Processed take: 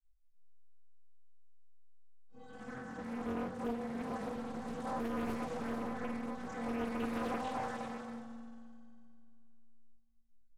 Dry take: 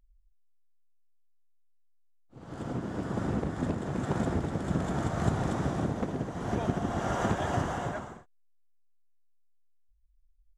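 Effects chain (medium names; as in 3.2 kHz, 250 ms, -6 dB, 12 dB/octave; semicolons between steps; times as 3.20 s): granulator, spray 19 ms; in parallel at -3 dB: hard clipper -35 dBFS, distortion -5 dB; on the sum: inharmonic resonator 230 Hz, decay 0.36 s, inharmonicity 0.03; chorus 0.2 Hz, delay 18 ms, depth 5.2 ms; doubling 48 ms -10.5 dB; on a send at -2 dB: reverberation RT60 2.3 s, pre-delay 3 ms; on the sum: loudspeaker Doppler distortion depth 0.98 ms; trim +5.5 dB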